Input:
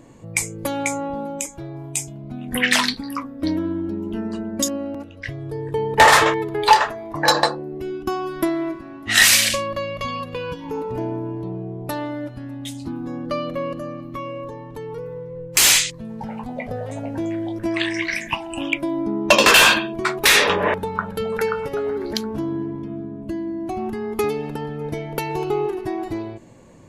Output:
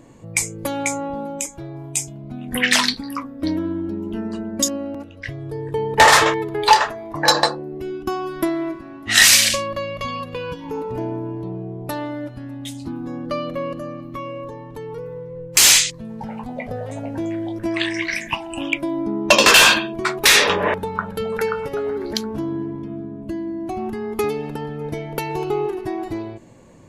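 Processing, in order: dynamic bell 5.7 kHz, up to +4 dB, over -30 dBFS, Q 0.95

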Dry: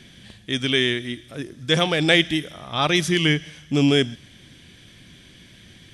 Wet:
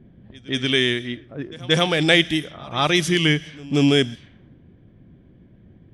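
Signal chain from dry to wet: level-controlled noise filter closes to 510 Hz, open at -18.5 dBFS; reverse echo 181 ms -21.5 dB; trim +1 dB

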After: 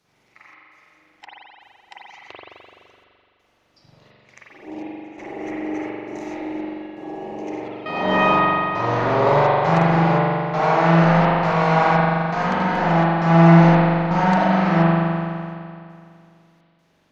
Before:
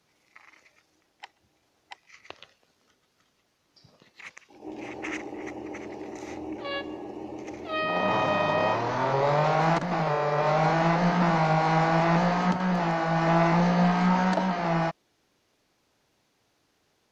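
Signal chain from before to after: trance gate "xxx.xxx..x" 84 bpm -24 dB; spring tank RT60 2.4 s, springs 42 ms, chirp 55 ms, DRR -7.5 dB

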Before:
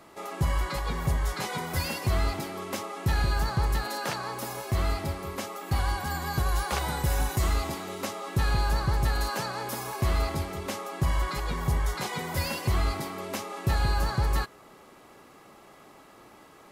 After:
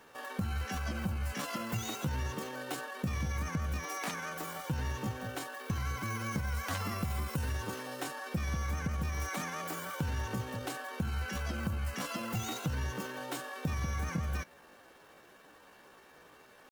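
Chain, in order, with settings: dynamic bell 140 Hz, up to +4 dB, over -40 dBFS, Q 0.82; pitch shift +5.5 st; compression, threshold -26 dBFS, peak gain reduction 8 dB; trim -5 dB

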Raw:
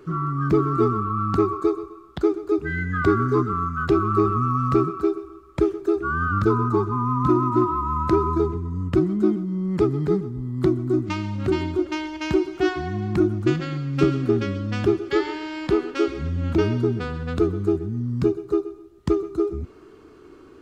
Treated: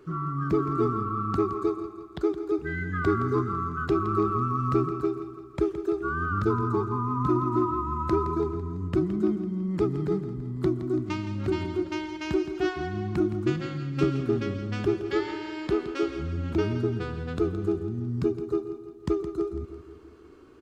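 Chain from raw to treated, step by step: feedback delay 167 ms, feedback 53%, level -11.5 dB; trim -5.5 dB

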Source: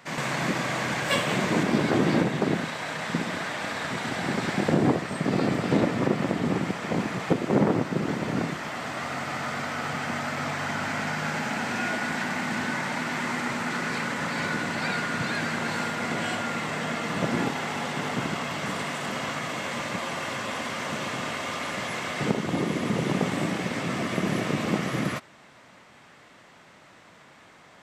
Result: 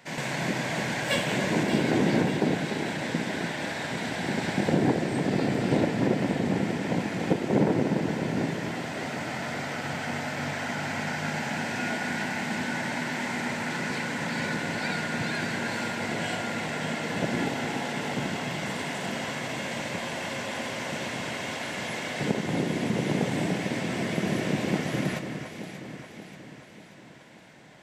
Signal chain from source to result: peaking EQ 1.2 kHz -13.5 dB 0.25 oct; on a send: echo whose repeats swap between lows and highs 292 ms, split 2 kHz, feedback 73%, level -6.5 dB; on the sum: trim -1.5 dB

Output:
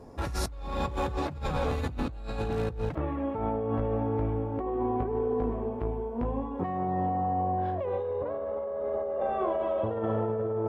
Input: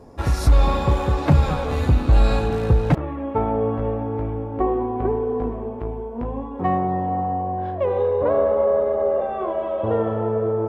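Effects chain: compressor with a negative ratio -24 dBFS, ratio -1; trim -6.5 dB

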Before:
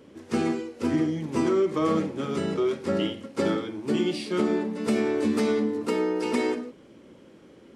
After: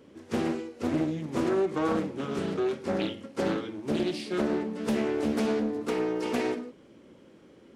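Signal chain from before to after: loudspeaker Doppler distortion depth 0.44 ms; trim -3 dB

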